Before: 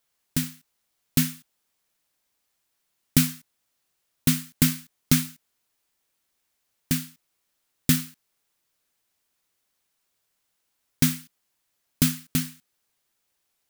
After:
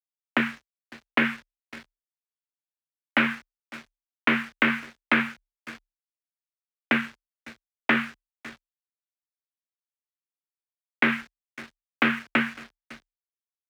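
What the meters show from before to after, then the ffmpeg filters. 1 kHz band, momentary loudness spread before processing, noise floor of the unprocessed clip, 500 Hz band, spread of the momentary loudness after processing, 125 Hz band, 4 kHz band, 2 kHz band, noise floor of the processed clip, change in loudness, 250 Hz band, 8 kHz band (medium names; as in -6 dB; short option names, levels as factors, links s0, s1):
+16.0 dB, 14 LU, -76 dBFS, +10.5 dB, 20 LU, -14.5 dB, -2.0 dB, +14.0 dB, under -85 dBFS, -0.5 dB, -1.5 dB, under -20 dB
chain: -filter_complex "[0:a]apsyclip=8.91,agate=range=0.0447:threshold=0.0355:ratio=16:detection=peak,adynamicequalizer=threshold=0.0112:dfrequency=1600:dqfactor=6.4:tfrequency=1600:tqfactor=6.4:attack=5:release=100:ratio=0.375:range=2:mode=boostabove:tftype=bell,aeval=exprs='clip(val(0),-1,0.631)':c=same,asplit=2[s0][s1];[s1]aecho=0:1:553:0.0668[s2];[s0][s2]amix=inputs=2:normalize=0,highpass=f=340:t=q:w=0.5412,highpass=f=340:t=q:w=1.307,lowpass=f=2500:t=q:w=0.5176,lowpass=f=2500:t=q:w=0.7071,lowpass=f=2500:t=q:w=1.932,afreqshift=-54,aeval=exprs='sgn(val(0))*max(abs(val(0))-0.00531,0)':c=same,afreqshift=33,acompressor=threshold=0.0316:ratio=2,volume=1.88"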